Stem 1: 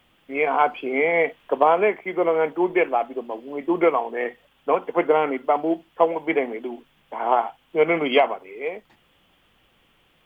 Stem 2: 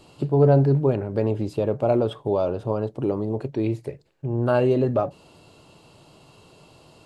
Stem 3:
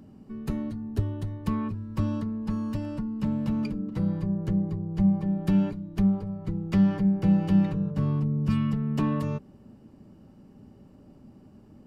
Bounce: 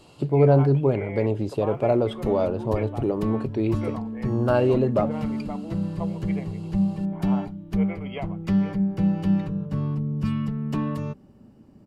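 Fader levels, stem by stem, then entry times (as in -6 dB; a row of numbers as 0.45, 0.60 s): -17.5, -0.5, -0.5 dB; 0.00, 0.00, 1.75 s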